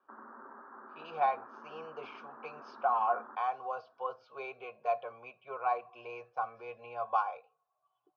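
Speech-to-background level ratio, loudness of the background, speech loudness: 15.5 dB, -51.0 LUFS, -35.5 LUFS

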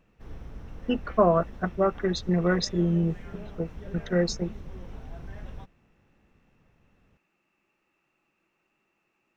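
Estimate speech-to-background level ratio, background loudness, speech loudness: 17.0 dB, -44.0 LUFS, -27.0 LUFS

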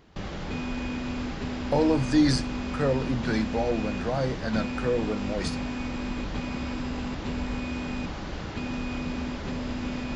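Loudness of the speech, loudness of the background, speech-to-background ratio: -27.5 LUFS, -33.0 LUFS, 5.5 dB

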